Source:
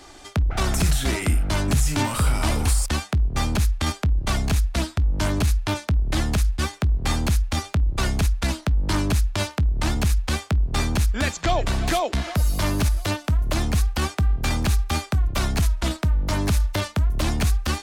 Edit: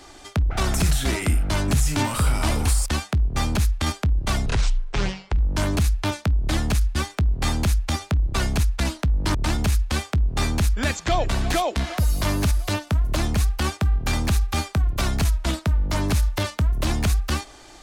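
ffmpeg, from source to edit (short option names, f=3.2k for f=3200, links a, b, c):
-filter_complex "[0:a]asplit=4[a][b][c][d];[a]atrim=end=4.464[e];[b]atrim=start=4.46:end=5.01,asetpts=PTS-STARTPTS,asetrate=26460,aresample=44100[f];[c]atrim=start=5.006:end=8.982[g];[d]atrim=start=9.718[h];[e][f]acrossfade=d=0.004:c1=hsin:c2=hsin[i];[i][g]acrossfade=d=0.004:c1=hsin:c2=hsin[j];[j][h]acrossfade=d=0.004:c1=hsin:c2=hsin"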